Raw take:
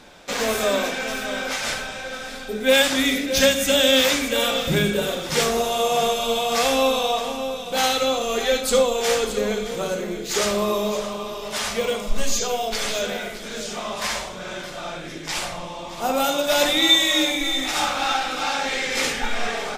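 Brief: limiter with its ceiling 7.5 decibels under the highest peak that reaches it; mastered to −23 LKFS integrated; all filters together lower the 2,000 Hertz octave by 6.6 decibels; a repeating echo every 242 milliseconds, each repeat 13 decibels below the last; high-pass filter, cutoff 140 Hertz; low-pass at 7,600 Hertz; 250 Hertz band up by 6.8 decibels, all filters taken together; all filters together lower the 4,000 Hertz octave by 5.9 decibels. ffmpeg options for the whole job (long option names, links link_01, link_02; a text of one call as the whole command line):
ffmpeg -i in.wav -af "highpass=140,lowpass=7600,equalizer=frequency=250:width_type=o:gain=8.5,equalizer=frequency=2000:width_type=o:gain=-7.5,equalizer=frequency=4000:width_type=o:gain=-4.5,alimiter=limit=-12dB:level=0:latency=1,aecho=1:1:242|484|726:0.224|0.0493|0.0108" out.wav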